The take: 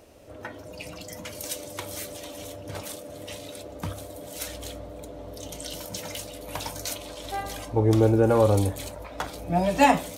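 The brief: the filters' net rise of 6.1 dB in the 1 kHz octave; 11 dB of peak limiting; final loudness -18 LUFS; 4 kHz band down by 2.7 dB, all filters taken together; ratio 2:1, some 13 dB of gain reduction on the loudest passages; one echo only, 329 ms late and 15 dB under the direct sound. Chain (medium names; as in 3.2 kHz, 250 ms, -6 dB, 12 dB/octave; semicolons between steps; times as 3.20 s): peaking EQ 1 kHz +8 dB; peaking EQ 4 kHz -4 dB; compression 2:1, threshold -33 dBFS; peak limiter -26 dBFS; delay 329 ms -15 dB; trim +19.5 dB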